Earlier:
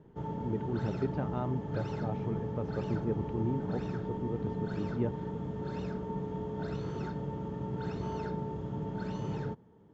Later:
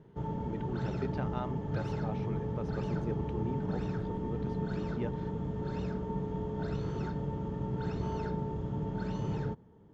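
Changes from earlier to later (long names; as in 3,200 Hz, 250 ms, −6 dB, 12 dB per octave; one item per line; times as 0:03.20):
speech: add spectral tilt +3.5 dB per octave
master: remove high-pass filter 110 Hz 6 dB per octave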